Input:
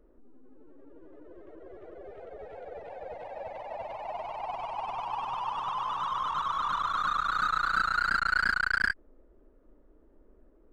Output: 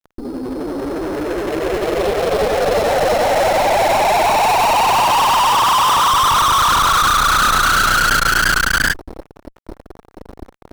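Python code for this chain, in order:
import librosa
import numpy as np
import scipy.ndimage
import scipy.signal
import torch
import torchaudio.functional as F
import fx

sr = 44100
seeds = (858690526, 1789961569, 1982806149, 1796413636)

p1 = fx.sample_hold(x, sr, seeds[0], rate_hz=4700.0, jitter_pct=0)
p2 = x + F.gain(torch.from_numpy(p1), -5.0).numpy()
p3 = fx.fuzz(p2, sr, gain_db=44.0, gate_db=-49.0)
y = F.gain(torch.from_numpy(p3), 1.0).numpy()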